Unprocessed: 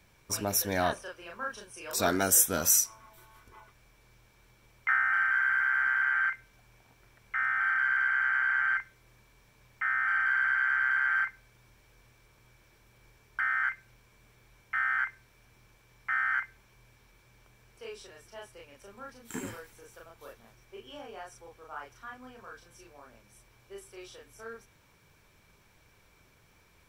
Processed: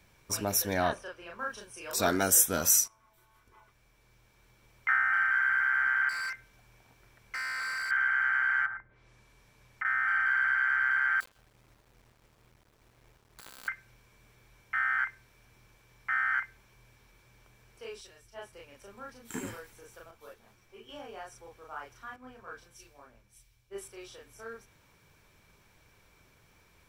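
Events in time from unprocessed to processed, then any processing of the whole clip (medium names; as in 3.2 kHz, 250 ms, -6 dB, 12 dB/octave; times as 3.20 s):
0.74–1.39 s: treble shelf 5.8 kHz -7.5 dB
2.88–4.92 s: fade in, from -13 dB
6.09–7.91 s: hard clipper -33 dBFS
8.65–9.85 s: low-pass that closes with the level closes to 840 Hz, closed at -30 dBFS
11.20–13.68 s: dead-time distortion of 0.29 ms
18.01–18.53 s: three bands expanded up and down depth 100%
20.11–20.89 s: three-phase chorus
22.16–23.88 s: three bands expanded up and down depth 100%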